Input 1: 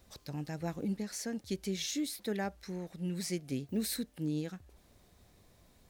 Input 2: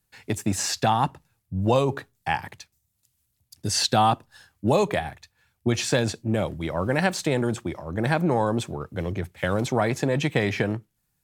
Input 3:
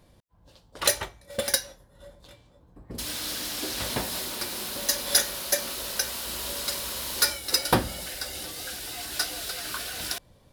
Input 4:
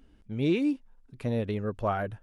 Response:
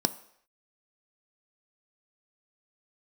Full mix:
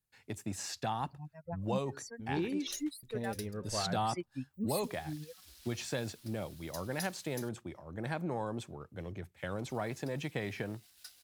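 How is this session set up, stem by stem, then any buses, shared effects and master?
+0.5 dB, 0.85 s, no send, expander on every frequency bin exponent 3; reverb removal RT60 0.83 s
-14.0 dB, 0.00 s, no send, none
-15.0 dB, 1.85 s, muted 7.49–9.69 s, no send, crossover distortion -39 dBFS; amplifier tone stack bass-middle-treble 5-5-5
-5.0 dB, 1.90 s, no send, flange 0.93 Hz, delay 9.3 ms, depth 7.3 ms, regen -87%; gate with hold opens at -49 dBFS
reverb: none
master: none

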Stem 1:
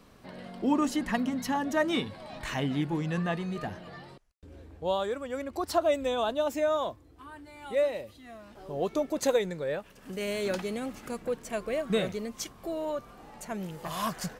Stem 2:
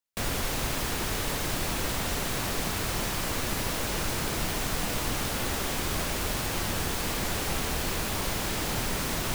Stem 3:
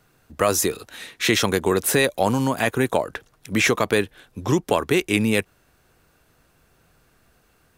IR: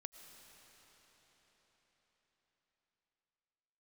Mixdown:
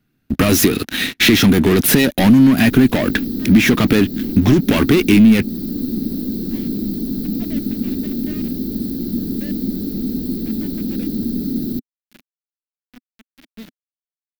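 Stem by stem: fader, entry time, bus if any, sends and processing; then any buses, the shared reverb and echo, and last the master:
-12.5 dB, 1.65 s, no send, bit crusher 4-bit
-2.0 dB, 2.45 s, no send, FFT filter 140 Hz 0 dB, 210 Hz +13 dB, 440 Hz +10 dB, 920 Hz -14 dB, 1.4 kHz -12 dB, 2.8 kHz -21 dB, 4.2 kHz +2 dB, 8.8 kHz -15 dB, 16 kHz +11 dB
+3.0 dB, 0.00 s, no send, waveshaping leveller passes 5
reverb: none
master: ten-band graphic EQ 250 Hz +12 dB, 500 Hz -10 dB, 1 kHz -10 dB, 8 kHz -11 dB; compression 2.5:1, threshold -11 dBFS, peak gain reduction 9.5 dB

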